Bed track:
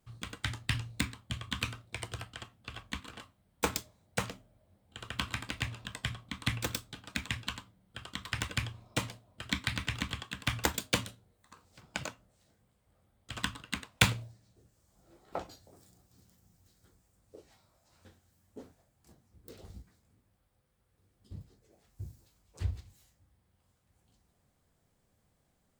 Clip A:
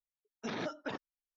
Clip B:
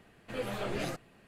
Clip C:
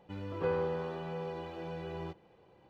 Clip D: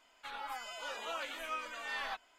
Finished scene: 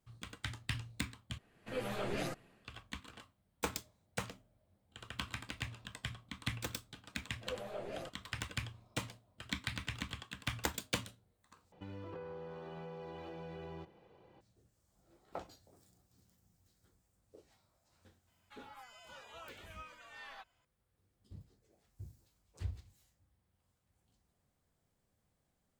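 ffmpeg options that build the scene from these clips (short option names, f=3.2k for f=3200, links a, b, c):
-filter_complex "[2:a]asplit=2[a][b];[0:a]volume=-6.5dB[c];[a]dynaudnorm=f=100:g=5:m=6dB[d];[b]equalizer=f=600:t=o:w=0.99:g=11[e];[3:a]acompressor=threshold=-42dB:ratio=16:attack=4.8:release=144:knee=1:detection=peak[f];[c]asplit=3[g][h][i];[g]atrim=end=1.384[j];[d]atrim=end=1.27,asetpts=PTS-STARTPTS,volume=-9dB[k];[h]atrim=start=2.646:end=11.724[l];[f]atrim=end=2.69,asetpts=PTS-STARTPTS,volume=-1dB[m];[i]atrim=start=14.406[n];[e]atrim=end=1.27,asetpts=PTS-STARTPTS,volume=-14.5dB,afade=t=in:d=0.004:c=hsin,afade=t=out:st=1.266:d=0.004:c=hsin,adelay=7130[o];[4:a]atrim=end=2.38,asetpts=PTS-STARTPTS,volume=-12dB,afade=t=in:d=0.004:c=hsin,afade=t=out:st=2.376:d=0.004:c=hsin,adelay=18270[p];[j][k]acrossfade=d=0.004:c1=hsin:c2=hsin[q];[q][l]acrossfade=d=0.004:c1=hsin:c2=hsin[r];[r][m]acrossfade=d=0.004:c1=hsin:c2=hsin[s];[s][n]acrossfade=d=0.004:c1=hsin:c2=hsin[t];[t][o][p]amix=inputs=3:normalize=0"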